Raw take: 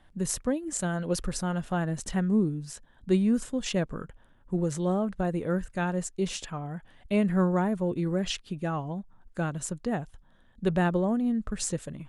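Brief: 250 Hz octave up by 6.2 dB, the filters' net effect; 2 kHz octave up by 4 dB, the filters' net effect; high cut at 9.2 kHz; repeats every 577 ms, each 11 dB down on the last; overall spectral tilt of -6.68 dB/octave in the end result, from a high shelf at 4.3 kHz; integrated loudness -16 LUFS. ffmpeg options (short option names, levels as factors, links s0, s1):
-af "lowpass=9200,equalizer=f=250:t=o:g=8.5,equalizer=f=2000:t=o:g=6,highshelf=f=4300:g=-4,aecho=1:1:577|1154|1731:0.282|0.0789|0.0221,volume=2.66"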